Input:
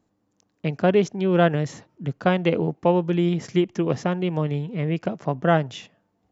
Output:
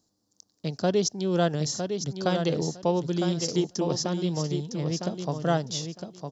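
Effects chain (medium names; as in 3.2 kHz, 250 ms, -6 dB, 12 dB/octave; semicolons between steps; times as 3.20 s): resonant high shelf 3.4 kHz +12.5 dB, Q 3; on a send: feedback delay 957 ms, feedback 17%, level -6.5 dB; on the sum: trim -5.5 dB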